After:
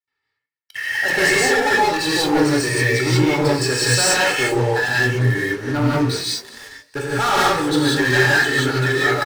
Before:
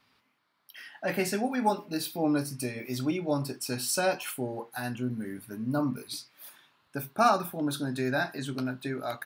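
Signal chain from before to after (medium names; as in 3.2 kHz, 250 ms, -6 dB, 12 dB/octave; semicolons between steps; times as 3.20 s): elliptic low-pass 8.5 kHz; de-hum 68.56 Hz, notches 20; gate with hold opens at -58 dBFS; peaking EQ 1.8 kHz +12.5 dB 0.42 oct; comb 2.3 ms, depth 90%; waveshaping leveller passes 5; on a send: frequency-shifting echo 218 ms, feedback 47%, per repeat +49 Hz, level -21 dB; on the sum: gated-style reverb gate 210 ms rising, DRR -5.5 dB; trim -9 dB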